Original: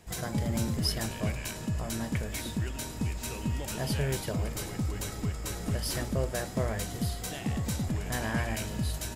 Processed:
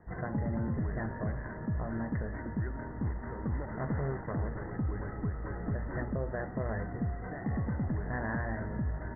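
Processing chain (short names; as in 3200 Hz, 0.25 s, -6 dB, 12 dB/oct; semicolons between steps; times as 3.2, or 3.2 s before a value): 3.02–4.71 self-modulated delay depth 0.75 ms; Chebyshev low-pass 2000 Hz, order 10; limiter -25 dBFS, peak gain reduction 6 dB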